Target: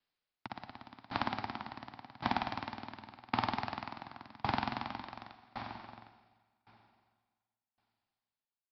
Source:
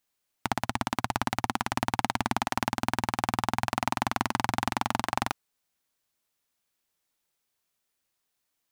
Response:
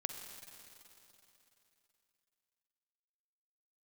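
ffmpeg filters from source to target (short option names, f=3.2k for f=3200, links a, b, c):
-filter_complex "[0:a]acrossover=split=150|1600[a][b][c];[a]alimiter=level_in=12.5dB:limit=-24dB:level=0:latency=1,volume=-12.5dB[d];[d][b][c]amix=inputs=3:normalize=0,asoftclip=type=tanh:threshold=-13.5dB,aresample=11025,acrusher=bits=4:mode=log:mix=0:aa=0.000001,aresample=44100,asplit=2[e][f];[f]adelay=758,volume=-12dB,highshelf=f=4k:g=-17.1[g];[e][g]amix=inputs=2:normalize=0[h];[1:a]atrim=start_sample=2205[i];[h][i]afir=irnorm=-1:irlink=0,aeval=exprs='val(0)*pow(10,-26*if(lt(mod(0.9*n/s,1),2*abs(0.9)/1000),1-mod(0.9*n/s,1)/(2*abs(0.9)/1000),(mod(0.9*n/s,1)-2*abs(0.9)/1000)/(1-2*abs(0.9)/1000))/20)':c=same"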